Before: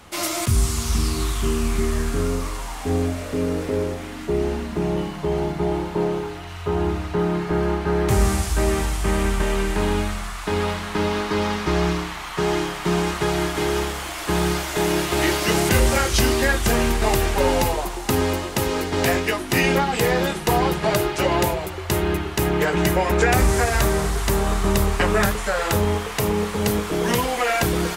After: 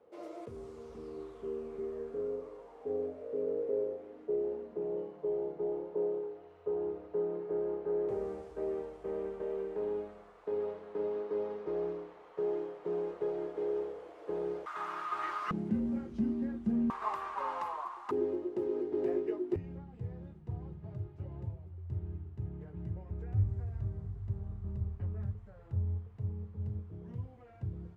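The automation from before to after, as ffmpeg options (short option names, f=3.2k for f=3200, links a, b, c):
-af "asetnsamples=n=441:p=0,asendcmd='14.66 bandpass f 1200;15.51 bandpass f 220;16.9 bandpass f 1100;18.11 bandpass f 370;19.56 bandpass f 100',bandpass=f=470:t=q:w=9.5:csg=0"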